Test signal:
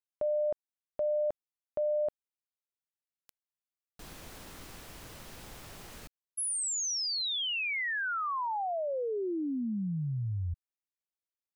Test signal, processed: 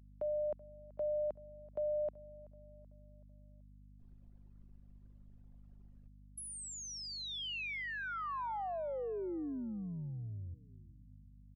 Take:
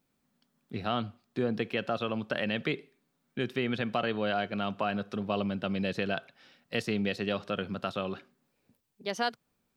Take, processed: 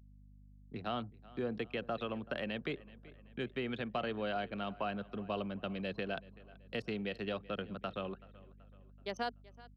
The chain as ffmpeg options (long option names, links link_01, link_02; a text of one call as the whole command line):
ffmpeg -i in.wav -filter_complex "[0:a]anlmdn=0.631,asplit=2[link_01][link_02];[link_02]adelay=380,lowpass=frequency=4200:poles=1,volume=-21dB,asplit=2[link_03][link_04];[link_04]adelay=380,lowpass=frequency=4200:poles=1,volume=0.5,asplit=2[link_05][link_06];[link_06]adelay=380,lowpass=frequency=4200:poles=1,volume=0.5,asplit=2[link_07][link_08];[link_08]adelay=380,lowpass=frequency=4200:poles=1,volume=0.5[link_09];[link_03][link_05][link_07][link_09]amix=inputs=4:normalize=0[link_10];[link_01][link_10]amix=inputs=2:normalize=0,aeval=exprs='val(0)+0.00282*(sin(2*PI*50*n/s)+sin(2*PI*2*50*n/s)/2+sin(2*PI*3*50*n/s)/3+sin(2*PI*4*50*n/s)/4+sin(2*PI*5*50*n/s)/5)':channel_layout=same,acrossover=split=110|300|1200|2800[link_11][link_12][link_13][link_14][link_15];[link_11]acompressor=threshold=-48dB:ratio=2.5[link_16];[link_12]acompressor=threshold=-38dB:ratio=2.5[link_17];[link_14]acompressor=threshold=-38dB:ratio=6[link_18];[link_15]acompressor=threshold=-40dB:ratio=5[link_19];[link_16][link_17][link_13][link_18][link_19]amix=inputs=5:normalize=0,volume=-6dB" out.wav